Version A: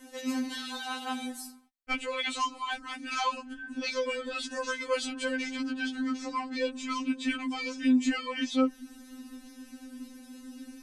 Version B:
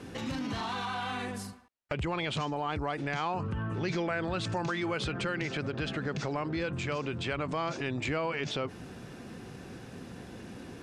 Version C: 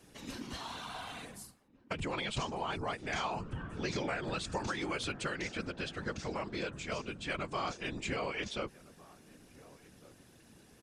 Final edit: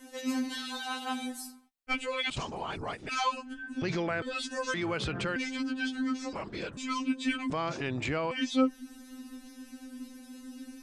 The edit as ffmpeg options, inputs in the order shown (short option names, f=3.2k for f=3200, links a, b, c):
-filter_complex "[2:a]asplit=2[a][b];[1:a]asplit=3[c][d][e];[0:a]asplit=6[f][g][h][i][j][k];[f]atrim=end=2.302[l];[a]atrim=start=2.298:end=3.092[m];[g]atrim=start=3.088:end=3.822[n];[c]atrim=start=3.818:end=4.222[o];[h]atrim=start=4.218:end=4.742[p];[d]atrim=start=4.738:end=5.362[q];[i]atrim=start=5.358:end=6.332[r];[b]atrim=start=6.328:end=6.772[s];[j]atrim=start=6.768:end=7.502[t];[e]atrim=start=7.498:end=8.312[u];[k]atrim=start=8.308[v];[l][m]acrossfade=d=0.004:c1=hsin:c2=hsin[w];[w][n]acrossfade=d=0.004:c1=hsin:c2=hsin[x];[x][o]acrossfade=d=0.004:c1=hsin:c2=hsin[y];[y][p]acrossfade=d=0.004:c1=hsin:c2=hsin[z];[z][q]acrossfade=d=0.004:c1=hsin:c2=hsin[aa];[aa][r]acrossfade=d=0.004:c1=hsin:c2=hsin[ab];[ab][s]acrossfade=d=0.004:c1=hsin:c2=hsin[ac];[ac][t]acrossfade=d=0.004:c1=hsin:c2=hsin[ad];[ad][u]acrossfade=d=0.004:c1=hsin:c2=hsin[ae];[ae][v]acrossfade=d=0.004:c1=hsin:c2=hsin"